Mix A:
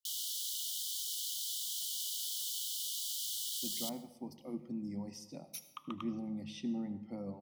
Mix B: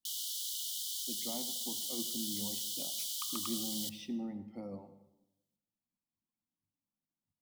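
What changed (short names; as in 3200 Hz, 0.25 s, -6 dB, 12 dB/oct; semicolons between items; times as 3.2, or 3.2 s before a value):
speech: entry -2.55 s; master: add bell 150 Hz -9 dB 0.54 oct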